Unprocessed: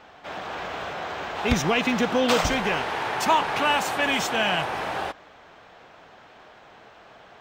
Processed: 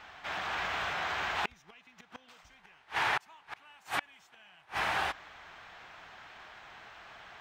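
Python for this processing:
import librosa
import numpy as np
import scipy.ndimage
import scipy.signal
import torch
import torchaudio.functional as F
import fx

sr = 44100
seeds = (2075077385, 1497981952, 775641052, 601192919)

y = fx.graphic_eq_10(x, sr, hz=(125, 250, 500, 2000), db=(-4, -7, -10, 3))
y = fx.gate_flip(y, sr, shuts_db=-18.0, range_db=-34)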